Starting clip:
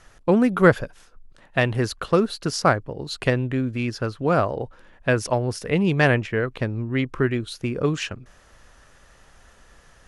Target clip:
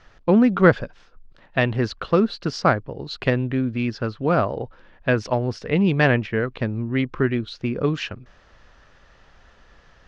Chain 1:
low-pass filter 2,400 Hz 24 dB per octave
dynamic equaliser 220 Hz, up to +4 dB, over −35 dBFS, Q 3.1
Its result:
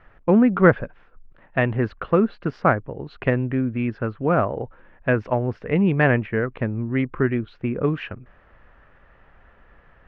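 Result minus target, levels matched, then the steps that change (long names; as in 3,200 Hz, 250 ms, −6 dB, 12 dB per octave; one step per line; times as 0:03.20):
4,000 Hz band −11.5 dB
change: low-pass filter 5,000 Hz 24 dB per octave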